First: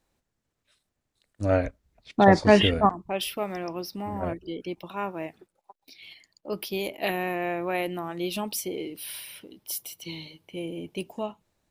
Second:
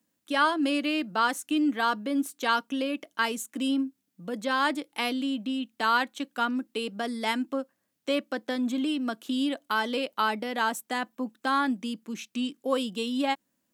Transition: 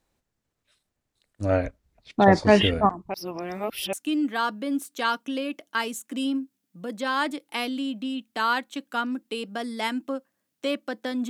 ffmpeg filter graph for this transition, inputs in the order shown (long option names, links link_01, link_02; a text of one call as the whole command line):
ffmpeg -i cue0.wav -i cue1.wav -filter_complex "[0:a]apad=whole_dur=11.29,atrim=end=11.29,asplit=2[link_01][link_02];[link_01]atrim=end=3.142[link_03];[link_02]atrim=start=3.138:end=3.932,asetpts=PTS-STARTPTS,areverse[link_04];[1:a]atrim=start=1.368:end=8.73[link_05];[link_03][link_04]acrossfade=duration=0.004:curve1=hsin:curve2=hsin[link_06];[link_06][link_05]acrossfade=duration=0.004:curve1=hsin:curve2=hsin" out.wav